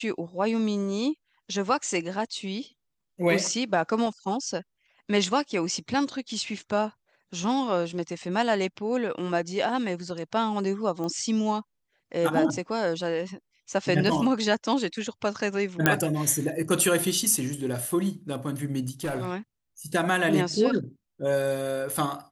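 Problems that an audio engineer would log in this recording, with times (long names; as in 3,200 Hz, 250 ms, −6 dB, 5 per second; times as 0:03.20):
0:11.04: click −22 dBFS
0:13.73: drop-out 2.5 ms
0:15.86: click −4 dBFS
0:18.88–0:19.32: clipping −25 dBFS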